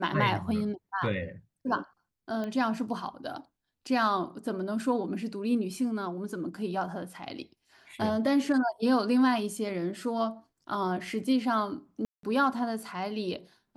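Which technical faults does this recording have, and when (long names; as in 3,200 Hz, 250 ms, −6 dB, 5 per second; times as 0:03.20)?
0:02.44: click −23 dBFS
0:12.05–0:12.23: drop-out 183 ms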